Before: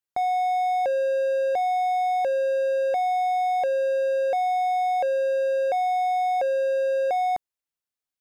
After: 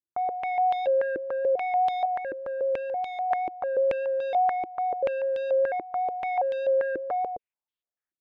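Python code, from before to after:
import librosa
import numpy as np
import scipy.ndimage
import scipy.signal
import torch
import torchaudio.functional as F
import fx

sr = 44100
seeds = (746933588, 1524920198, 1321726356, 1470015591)

y = fx.median_filter(x, sr, points=41, at=(2.05, 3.31))
y = fx.vibrato(y, sr, rate_hz=5.0, depth_cents=15.0)
y = fx.filter_held_lowpass(y, sr, hz=6.9, low_hz=340.0, high_hz=3400.0)
y = y * 10.0 ** (-6.5 / 20.0)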